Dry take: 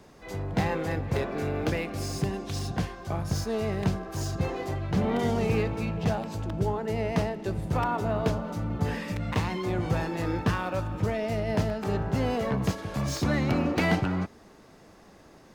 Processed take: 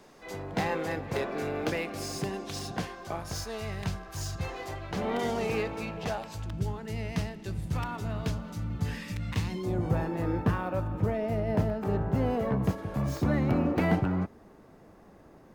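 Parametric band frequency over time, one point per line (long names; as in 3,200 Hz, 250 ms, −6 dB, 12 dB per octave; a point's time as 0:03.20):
parametric band −12 dB 2.6 octaves
0:02.98 63 Hz
0:03.64 320 Hz
0:04.36 320 Hz
0:05.09 92 Hz
0:05.97 92 Hz
0:06.58 580 Hz
0:09.32 580 Hz
0:09.98 5,100 Hz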